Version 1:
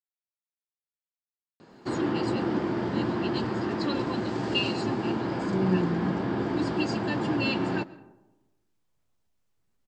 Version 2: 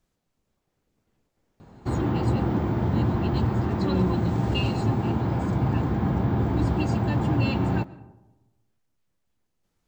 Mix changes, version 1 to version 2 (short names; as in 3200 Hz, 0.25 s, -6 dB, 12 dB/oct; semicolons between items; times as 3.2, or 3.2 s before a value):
speech: entry -1.70 s; background: remove speaker cabinet 240–8900 Hz, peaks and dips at 340 Hz +3 dB, 780 Hz -4 dB, 1700 Hz +4 dB, 2900 Hz +4 dB, 4800 Hz +9 dB